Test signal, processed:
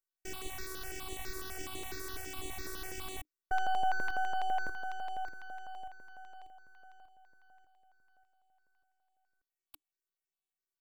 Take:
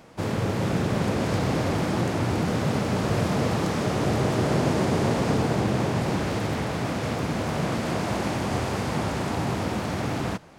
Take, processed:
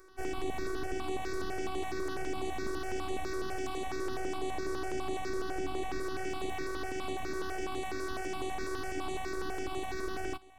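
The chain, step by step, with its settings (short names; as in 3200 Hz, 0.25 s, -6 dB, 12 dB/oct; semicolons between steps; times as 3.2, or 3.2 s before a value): robotiser 377 Hz; limiter -18.5 dBFS; half-wave rectifier; bell 300 Hz +9 dB 0.23 oct; step phaser 12 Hz 790–5200 Hz; gain -1.5 dB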